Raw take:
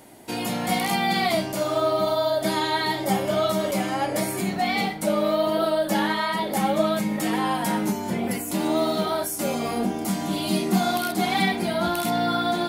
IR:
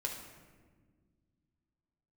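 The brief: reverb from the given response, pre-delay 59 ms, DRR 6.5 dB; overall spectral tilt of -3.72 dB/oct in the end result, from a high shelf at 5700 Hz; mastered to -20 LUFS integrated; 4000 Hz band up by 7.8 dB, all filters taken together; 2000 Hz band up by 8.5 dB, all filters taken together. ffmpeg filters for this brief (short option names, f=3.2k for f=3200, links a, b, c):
-filter_complex "[0:a]equalizer=f=2k:t=o:g=8.5,equalizer=f=4k:t=o:g=8.5,highshelf=f=5.7k:g=-5.5,asplit=2[a][b];[1:a]atrim=start_sample=2205,adelay=59[c];[b][c]afir=irnorm=-1:irlink=0,volume=-7.5dB[d];[a][d]amix=inputs=2:normalize=0"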